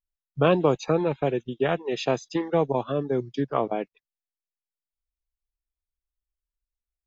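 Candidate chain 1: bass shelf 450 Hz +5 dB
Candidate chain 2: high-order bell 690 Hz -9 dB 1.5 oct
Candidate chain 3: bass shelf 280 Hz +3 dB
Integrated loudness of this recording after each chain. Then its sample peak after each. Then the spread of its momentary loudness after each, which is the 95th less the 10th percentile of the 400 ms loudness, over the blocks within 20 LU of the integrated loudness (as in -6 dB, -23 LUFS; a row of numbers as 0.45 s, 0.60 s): -23.0 LUFS, -29.0 LUFS, -25.0 LUFS; -6.0 dBFS, -11.0 dBFS, -8.0 dBFS; 6 LU, 7 LU, 6 LU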